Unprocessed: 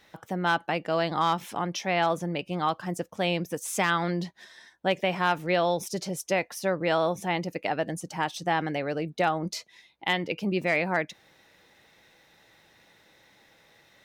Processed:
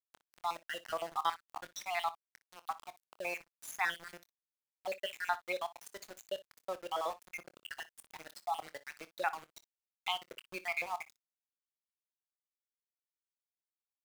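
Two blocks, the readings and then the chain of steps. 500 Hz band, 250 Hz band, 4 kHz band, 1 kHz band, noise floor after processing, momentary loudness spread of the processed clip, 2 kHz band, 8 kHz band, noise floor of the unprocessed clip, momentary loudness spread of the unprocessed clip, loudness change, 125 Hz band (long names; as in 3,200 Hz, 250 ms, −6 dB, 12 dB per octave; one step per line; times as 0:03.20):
−15.0 dB, −26.5 dB, −10.0 dB, −10.0 dB, below −85 dBFS, 14 LU, −10.5 dB, −12.0 dB, −61 dBFS, 7 LU, −11.5 dB, −32.5 dB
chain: time-frequency cells dropped at random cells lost 68%
high-pass filter 790 Hz 12 dB per octave
high-shelf EQ 3,400 Hz −3 dB
centre clipping without the shift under −40 dBFS
ambience of single reflections 25 ms −15.5 dB, 60 ms −18 dB
level −3.5 dB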